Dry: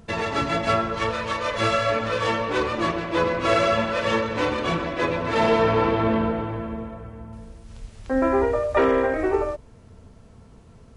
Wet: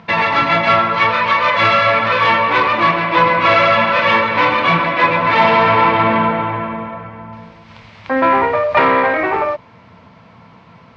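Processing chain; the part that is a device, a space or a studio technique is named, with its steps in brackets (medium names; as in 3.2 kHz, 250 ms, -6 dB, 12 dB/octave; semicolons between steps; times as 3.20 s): overdrive pedal into a guitar cabinet (overdrive pedal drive 16 dB, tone 4.3 kHz, clips at -7.5 dBFS; cabinet simulation 97–4600 Hz, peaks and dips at 110 Hz +6 dB, 170 Hz +8 dB, 410 Hz -9 dB, 1 kHz +7 dB, 2.2 kHz +7 dB); trim +2.5 dB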